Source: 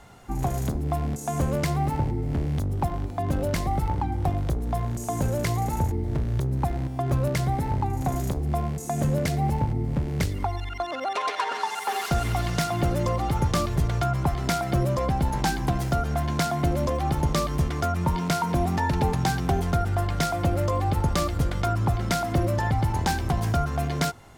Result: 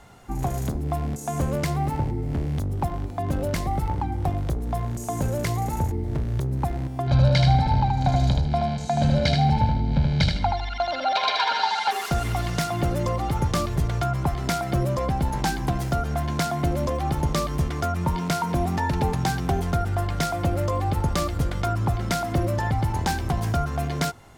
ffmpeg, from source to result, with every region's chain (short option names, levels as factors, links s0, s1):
-filter_complex "[0:a]asettb=1/sr,asplit=3[s0][s1][s2];[s0]atrim=end=7.074[s3];[s1]atrim=start=7.07:end=11.91,asetpts=PTS-STARTPTS,afade=t=in:d=0.004:c=qsin,afade=t=out:st=4.836:d=0.004:c=qsin,lowpass=f=4100:t=q:w=4.7,aecho=1:1:1.3:0.7,atrim=end_sample=213444,aecho=1:1:77|154|231|308:0.631|0.177|0.0495|0.0139,atrim=end_sample=213444[s4];[s2]atrim=start=11.906[s5];[s3][s4]acrossfade=d=0.004:c1=hsin:c2=qsin[s6];[s6][s5]acrossfade=d=0.004:c1=qsin:c2=hsin"